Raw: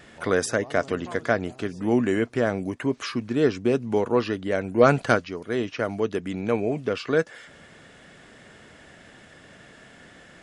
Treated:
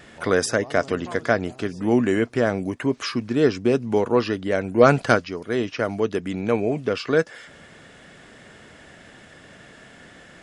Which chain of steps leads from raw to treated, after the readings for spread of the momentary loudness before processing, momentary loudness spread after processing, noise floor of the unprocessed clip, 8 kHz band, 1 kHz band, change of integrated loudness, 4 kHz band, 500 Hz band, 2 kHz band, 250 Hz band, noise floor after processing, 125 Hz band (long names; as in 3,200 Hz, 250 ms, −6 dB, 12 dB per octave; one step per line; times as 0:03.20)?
8 LU, 8 LU, −50 dBFS, +3.0 dB, +2.5 dB, +2.5 dB, +3.5 dB, +2.5 dB, +2.5 dB, +2.5 dB, −48 dBFS, +2.5 dB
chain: dynamic equaliser 5,100 Hz, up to +5 dB, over −60 dBFS, Q 7.1
level +2.5 dB